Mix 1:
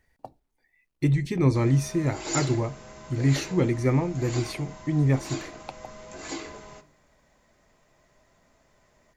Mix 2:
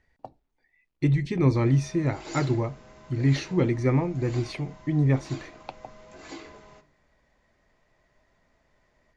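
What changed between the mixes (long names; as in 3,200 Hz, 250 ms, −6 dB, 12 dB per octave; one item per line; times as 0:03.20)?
background −5.5 dB
master: add low-pass filter 5,100 Hz 12 dB per octave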